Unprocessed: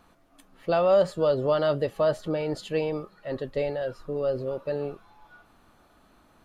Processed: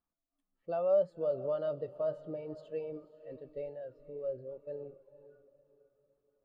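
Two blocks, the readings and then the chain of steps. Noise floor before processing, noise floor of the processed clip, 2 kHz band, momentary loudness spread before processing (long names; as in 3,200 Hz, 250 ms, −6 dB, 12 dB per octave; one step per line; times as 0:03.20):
−61 dBFS, below −85 dBFS, below −20 dB, 12 LU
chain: feedback delay with all-pass diffusion 526 ms, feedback 51%, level −11 dB
every bin expanded away from the loudest bin 1.5 to 1
level −7.5 dB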